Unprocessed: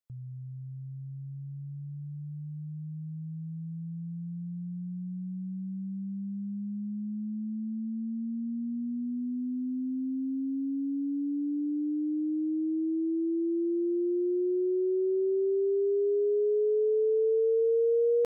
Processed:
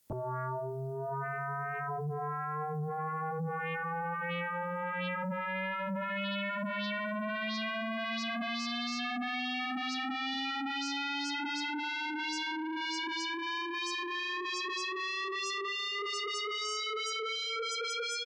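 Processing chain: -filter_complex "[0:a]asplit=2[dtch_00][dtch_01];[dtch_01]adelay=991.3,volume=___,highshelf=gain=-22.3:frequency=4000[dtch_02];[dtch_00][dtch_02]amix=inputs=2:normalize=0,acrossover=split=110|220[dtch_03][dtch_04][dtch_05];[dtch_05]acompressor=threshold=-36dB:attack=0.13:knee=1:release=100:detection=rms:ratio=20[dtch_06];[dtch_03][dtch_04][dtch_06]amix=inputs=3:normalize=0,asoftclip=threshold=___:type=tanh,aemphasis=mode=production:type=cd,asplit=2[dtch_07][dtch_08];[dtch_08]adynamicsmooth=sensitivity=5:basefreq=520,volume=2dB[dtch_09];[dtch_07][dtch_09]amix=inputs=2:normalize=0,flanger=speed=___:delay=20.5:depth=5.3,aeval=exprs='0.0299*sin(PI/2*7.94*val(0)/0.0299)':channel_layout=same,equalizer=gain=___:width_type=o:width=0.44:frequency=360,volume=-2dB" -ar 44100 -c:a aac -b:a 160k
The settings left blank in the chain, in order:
-24dB, -37dB, 0.63, -5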